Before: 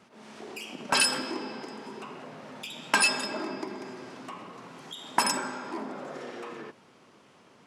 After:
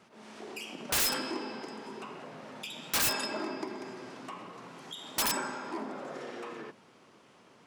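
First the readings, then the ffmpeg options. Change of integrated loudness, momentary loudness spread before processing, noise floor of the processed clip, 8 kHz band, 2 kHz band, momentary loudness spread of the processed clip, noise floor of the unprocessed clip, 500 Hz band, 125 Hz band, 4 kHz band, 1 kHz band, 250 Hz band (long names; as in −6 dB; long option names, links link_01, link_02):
−4.5 dB, 20 LU, −60 dBFS, −2.0 dB, −7.0 dB, 18 LU, −58 dBFS, −2.0 dB, −1.0 dB, −4.0 dB, −6.0 dB, −2.5 dB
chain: -af "bandreject=frequency=50:width_type=h:width=6,bandreject=frequency=100:width_type=h:width=6,bandreject=frequency=150:width_type=h:width=6,bandreject=frequency=200:width_type=h:width=6,bandreject=frequency=250:width_type=h:width=6,aeval=exprs='(mod(10.6*val(0)+1,2)-1)/10.6':channel_layout=same,volume=-1.5dB"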